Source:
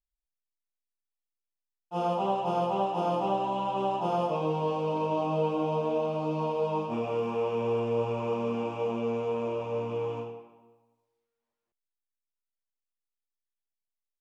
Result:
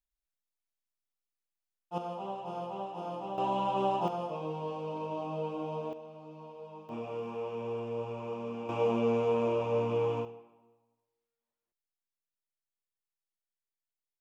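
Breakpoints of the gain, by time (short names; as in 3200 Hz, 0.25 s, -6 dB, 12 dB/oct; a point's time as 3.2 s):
-2 dB
from 1.98 s -10.5 dB
from 3.38 s -0.5 dB
from 4.08 s -8 dB
from 5.93 s -18 dB
from 6.89 s -8 dB
from 8.69 s +2 dB
from 10.25 s -6 dB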